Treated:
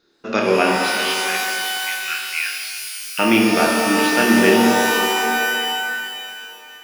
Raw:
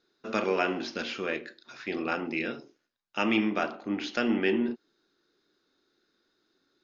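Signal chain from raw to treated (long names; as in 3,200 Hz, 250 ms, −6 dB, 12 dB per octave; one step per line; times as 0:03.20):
0:00.76–0:03.19: inverse Chebyshev high-pass filter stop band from 800 Hz, stop band 40 dB
flutter between parallel walls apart 4.5 metres, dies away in 0.24 s
reverb with rising layers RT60 2.6 s, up +12 semitones, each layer −2 dB, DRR 2.5 dB
level +8.5 dB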